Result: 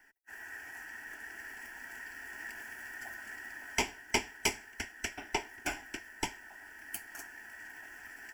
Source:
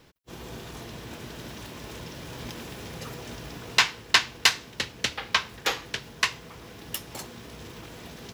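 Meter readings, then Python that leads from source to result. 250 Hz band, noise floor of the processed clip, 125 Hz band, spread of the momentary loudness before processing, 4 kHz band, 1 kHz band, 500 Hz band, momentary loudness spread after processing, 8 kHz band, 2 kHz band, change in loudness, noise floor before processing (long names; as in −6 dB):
−6.0 dB, −54 dBFS, −13.5 dB, 20 LU, −15.0 dB, −8.0 dB, −6.0 dB, 13 LU, −7.0 dB, −8.5 dB, −12.5 dB, −47 dBFS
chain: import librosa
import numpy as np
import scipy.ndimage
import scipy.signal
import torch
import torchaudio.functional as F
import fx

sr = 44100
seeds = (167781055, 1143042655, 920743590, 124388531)

y = fx.band_invert(x, sr, width_hz=2000)
y = fx.fixed_phaser(y, sr, hz=770.0, stages=8)
y = F.gain(torch.from_numpy(y), -5.0).numpy()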